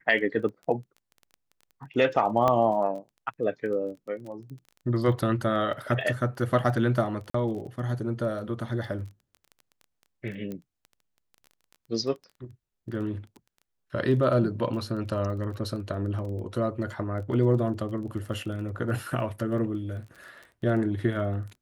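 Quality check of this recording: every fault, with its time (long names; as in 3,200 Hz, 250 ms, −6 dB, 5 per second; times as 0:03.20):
surface crackle 15 per second −37 dBFS
0:02.48: click −12 dBFS
0:07.30–0:07.34: drop-out 44 ms
0:10.52: click −24 dBFS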